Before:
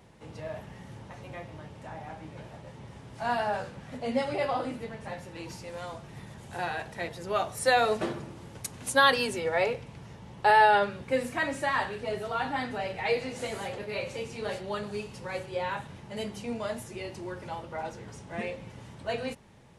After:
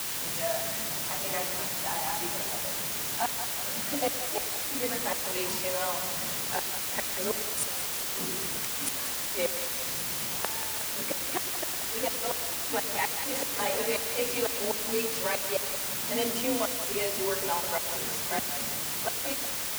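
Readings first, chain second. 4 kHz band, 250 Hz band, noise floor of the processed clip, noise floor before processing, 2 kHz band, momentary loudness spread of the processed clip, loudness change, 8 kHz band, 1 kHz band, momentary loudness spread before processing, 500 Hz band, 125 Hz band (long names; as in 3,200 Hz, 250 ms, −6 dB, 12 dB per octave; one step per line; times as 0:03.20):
+5.0 dB, −1.0 dB, −33 dBFS, −48 dBFS, −3.0 dB, 2 LU, +1.0 dB, +15.0 dB, −6.0 dB, 21 LU, −2.5 dB, −4.5 dB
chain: noise reduction from a noise print of the clip's start 8 dB
bass and treble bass −4 dB, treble −2 dB
in parallel at +3 dB: downward compressor 10 to 1, threshold −41 dBFS, peak gain reduction 24.5 dB
on the sum: gate with flip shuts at −21 dBFS, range −30 dB
bit-depth reduction 6 bits, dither triangular
frequency shifter +33 Hz
on a send: echo with a time of its own for lows and highs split 500 Hz, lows 107 ms, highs 183 ms, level −10 dB
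on the sum: level +2.5 dB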